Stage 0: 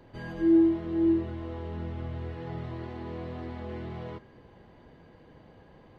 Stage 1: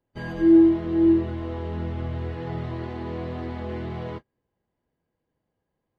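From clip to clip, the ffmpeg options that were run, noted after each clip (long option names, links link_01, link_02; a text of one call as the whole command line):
ffmpeg -i in.wav -af "agate=range=-32dB:threshold=-41dB:ratio=16:detection=peak,volume=6dB" out.wav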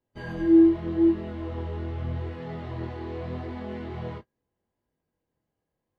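ffmpeg -i in.wav -af "flanger=delay=19.5:depth=7.4:speed=0.81" out.wav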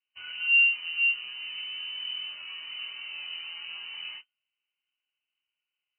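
ffmpeg -i in.wav -af "lowpass=frequency=2600:width_type=q:width=0.5098,lowpass=frequency=2600:width_type=q:width=0.6013,lowpass=frequency=2600:width_type=q:width=0.9,lowpass=frequency=2600:width_type=q:width=2.563,afreqshift=-3100,volume=-5dB" out.wav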